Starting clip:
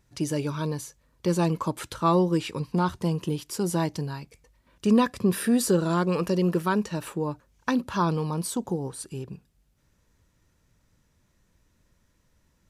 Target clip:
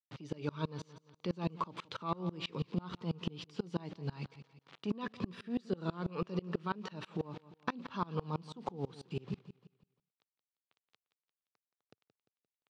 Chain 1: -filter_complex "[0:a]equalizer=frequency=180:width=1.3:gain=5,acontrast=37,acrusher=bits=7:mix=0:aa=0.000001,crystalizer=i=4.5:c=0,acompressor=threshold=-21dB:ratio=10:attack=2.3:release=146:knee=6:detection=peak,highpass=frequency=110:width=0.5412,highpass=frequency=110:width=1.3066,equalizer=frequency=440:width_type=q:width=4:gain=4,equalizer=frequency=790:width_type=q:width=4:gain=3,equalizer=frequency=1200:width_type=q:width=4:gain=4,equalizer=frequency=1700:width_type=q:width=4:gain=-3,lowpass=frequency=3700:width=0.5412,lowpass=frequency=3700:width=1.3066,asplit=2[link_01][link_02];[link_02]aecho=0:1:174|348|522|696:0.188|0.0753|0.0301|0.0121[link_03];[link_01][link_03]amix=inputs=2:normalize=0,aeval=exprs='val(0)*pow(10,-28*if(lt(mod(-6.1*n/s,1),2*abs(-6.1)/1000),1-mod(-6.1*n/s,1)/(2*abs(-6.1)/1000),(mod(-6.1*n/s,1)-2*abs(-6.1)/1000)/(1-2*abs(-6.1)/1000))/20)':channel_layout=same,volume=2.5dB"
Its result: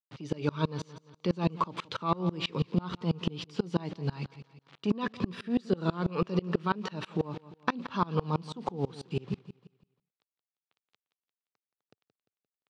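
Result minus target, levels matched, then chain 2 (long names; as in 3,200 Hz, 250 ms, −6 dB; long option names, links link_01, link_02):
downward compressor: peak gain reduction −7.5 dB
-filter_complex "[0:a]equalizer=frequency=180:width=1.3:gain=5,acontrast=37,acrusher=bits=7:mix=0:aa=0.000001,crystalizer=i=4.5:c=0,acompressor=threshold=-29.5dB:ratio=10:attack=2.3:release=146:knee=6:detection=peak,highpass=frequency=110:width=0.5412,highpass=frequency=110:width=1.3066,equalizer=frequency=440:width_type=q:width=4:gain=4,equalizer=frequency=790:width_type=q:width=4:gain=3,equalizer=frequency=1200:width_type=q:width=4:gain=4,equalizer=frequency=1700:width_type=q:width=4:gain=-3,lowpass=frequency=3700:width=0.5412,lowpass=frequency=3700:width=1.3066,asplit=2[link_01][link_02];[link_02]aecho=0:1:174|348|522|696:0.188|0.0753|0.0301|0.0121[link_03];[link_01][link_03]amix=inputs=2:normalize=0,aeval=exprs='val(0)*pow(10,-28*if(lt(mod(-6.1*n/s,1),2*abs(-6.1)/1000),1-mod(-6.1*n/s,1)/(2*abs(-6.1)/1000),(mod(-6.1*n/s,1)-2*abs(-6.1)/1000)/(1-2*abs(-6.1)/1000))/20)':channel_layout=same,volume=2.5dB"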